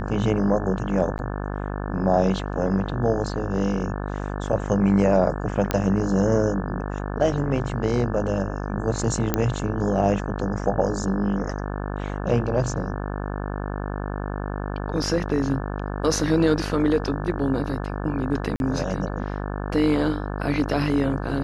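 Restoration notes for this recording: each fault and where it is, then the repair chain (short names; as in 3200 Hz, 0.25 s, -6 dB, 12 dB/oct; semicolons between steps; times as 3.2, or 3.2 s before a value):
buzz 50 Hz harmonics 35 -29 dBFS
1.18–1.19 gap 9.9 ms
5.71 pop -7 dBFS
9.34 pop -6 dBFS
18.56–18.6 gap 41 ms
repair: de-click; de-hum 50 Hz, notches 35; interpolate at 1.18, 9.9 ms; interpolate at 18.56, 41 ms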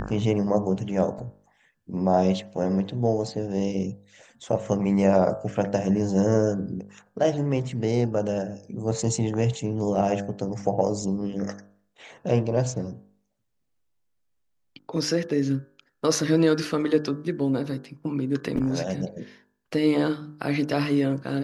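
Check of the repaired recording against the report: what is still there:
none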